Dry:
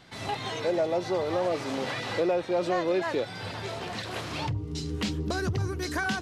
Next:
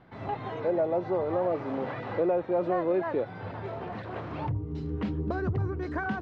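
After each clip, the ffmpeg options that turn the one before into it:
ffmpeg -i in.wav -af "lowpass=1300" out.wav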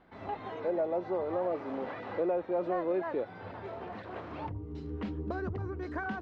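ffmpeg -i in.wav -af "equalizer=frequency=130:width_type=o:width=0.46:gain=-14.5,volume=-4dB" out.wav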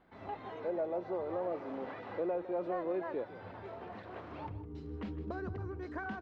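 ffmpeg -i in.wav -af "aecho=1:1:157:0.188,volume=-4.5dB" out.wav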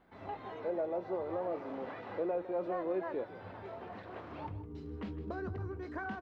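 ffmpeg -i in.wav -filter_complex "[0:a]asplit=2[link_01][link_02];[link_02]adelay=21,volume=-13dB[link_03];[link_01][link_03]amix=inputs=2:normalize=0" out.wav

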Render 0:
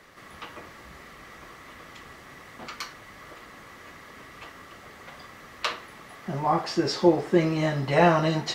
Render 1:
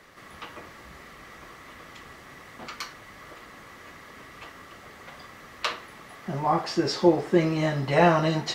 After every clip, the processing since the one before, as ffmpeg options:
ffmpeg -i in.wav -af anull out.wav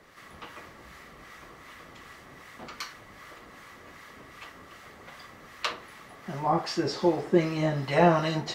ffmpeg -i in.wav -filter_complex "[0:a]acrossover=split=950[link_01][link_02];[link_01]aeval=exprs='val(0)*(1-0.5/2+0.5/2*cos(2*PI*2.6*n/s))':channel_layout=same[link_03];[link_02]aeval=exprs='val(0)*(1-0.5/2-0.5/2*cos(2*PI*2.6*n/s))':channel_layout=same[link_04];[link_03][link_04]amix=inputs=2:normalize=0" out.wav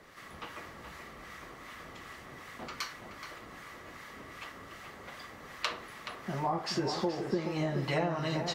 ffmpeg -i in.wav -filter_complex "[0:a]acompressor=threshold=-28dB:ratio=10,asplit=2[link_01][link_02];[link_02]adelay=425.7,volume=-7dB,highshelf=frequency=4000:gain=-9.58[link_03];[link_01][link_03]amix=inputs=2:normalize=0" out.wav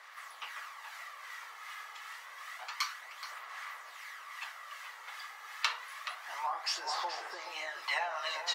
ffmpeg -i in.wav -af "aphaser=in_gain=1:out_gain=1:delay=2.4:decay=0.37:speed=0.28:type=sinusoidal,highpass=frequency=870:width=0.5412,highpass=frequency=870:width=1.3066,volume=2dB" out.wav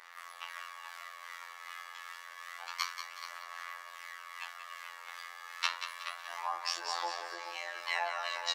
ffmpeg -i in.wav -af "afftfilt=real='hypot(re,im)*cos(PI*b)':imag='0':win_size=2048:overlap=0.75,aecho=1:1:184|368|552|736:0.355|0.135|0.0512|0.0195,volume=2.5dB" out.wav

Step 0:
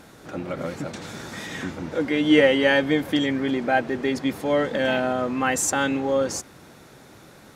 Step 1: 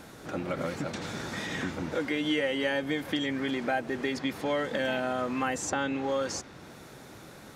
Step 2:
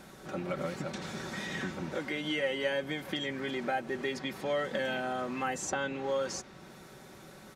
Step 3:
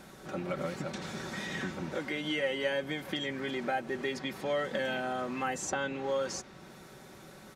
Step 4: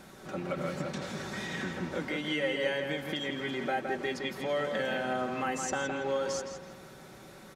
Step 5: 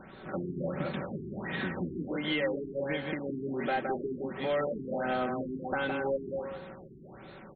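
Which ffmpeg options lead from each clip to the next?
ffmpeg -i in.wav -filter_complex "[0:a]acrossover=split=950|6400[link_01][link_02][link_03];[link_01]acompressor=threshold=-30dB:ratio=4[link_04];[link_02]acompressor=threshold=-33dB:ratio=4[link_05];[link_03]acompressor=threshold=-55dB:ratio=4[link_06];[link_04][link_05][link_06]amix=inputs=3:normalize=0" out.wav
ffmpeg -i in.wav -af "aecho=1:1:5.3:0.47,volume=-4dB" out.wav
ffmpeg -i in.wav -af anull out.wav
ffmpeg -i in.wav -filter_complex "[0:a]asplit=2[link_01][link_02];[link_02]adelay=165,lowpass=frequency=3700:poles=1,volume=-5dB,asplit=2[link_03][link_04];[link_04]adelay=165,lowpass=frequency=3700:poles=1,volume=0.39,asplit=2[link_05][link_06];[link_06]adelay=165,lowpass=frequency=3700:poles=1,volume=0.39,asplit=2[link_07][link_08];[link_08]adelay=165,lowpass=frequency=3700:poles=1,volume=0.39,asplit=2[link_09][link_10];[link_10]adelay=165,lowpass=frequency=3700:poles=1,volume=0.39[link_11];[link_01][link_03][link_05][link_07][link_09][link_11]amix=inputs=6:normalize=0" out.wav
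ffmpeg -i in.wav -filter_complex "[0:a]asplit=2[link_01][link_02];[link_02]aeval=exprs='(mod(16.8*val(0)+1,2)-1)/16.8':channel_layout=same,volume=-12dB[link_03];[link_01][link_03]amix=inputs=2:normalize=0,afftfilt=real='re*lt(b*sr/1024,410*pow(4500/410,0.5+0.5*sin(2*PI*1.4*pts/sr)))':imag='im*lt(b*sr/1024,410*pow(4500/410,0.5+0.5*sin(2*PI*1.4*pts/sr)))':win_size=1024:overlap=0.75" out.wav

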